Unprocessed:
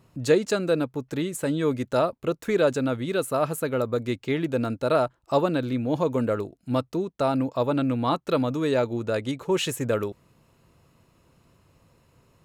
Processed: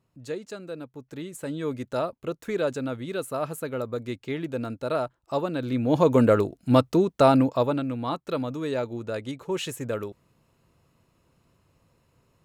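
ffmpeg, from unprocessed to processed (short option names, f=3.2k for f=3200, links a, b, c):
-af "volume=6.5dB,afade=t=in:st=0.77:d=1.01:silence=0.375837,afade=t=in:st=5.54:d=0.66:silence=0.266073,afade=t=out:st=7.28:d=0.55:silence=0.266073"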